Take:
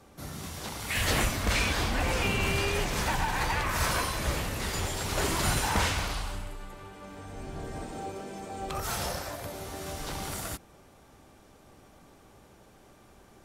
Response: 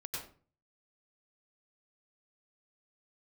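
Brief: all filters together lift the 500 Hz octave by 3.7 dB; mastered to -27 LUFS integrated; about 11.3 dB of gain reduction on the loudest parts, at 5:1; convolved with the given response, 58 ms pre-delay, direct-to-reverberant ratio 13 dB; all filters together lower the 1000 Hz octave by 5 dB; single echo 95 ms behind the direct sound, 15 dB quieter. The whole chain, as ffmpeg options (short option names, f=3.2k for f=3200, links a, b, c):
-filter_complex "[0:a]equalizer=f=500:t=o:g=7,equalizer=f=1k:t=o:g=-9,acompressor=threshold=-35dB:ratio=5,aecho=1:1:95:0.178,asplit=2[a][b];[1:a]atrim=start_sample=2205,adelay=58[c];[b][c]afir=irnorm=-1:irlink=0,volume=-13dB[d];[a][d]amix=inputs=2:normalize=0,volume=11.5dB"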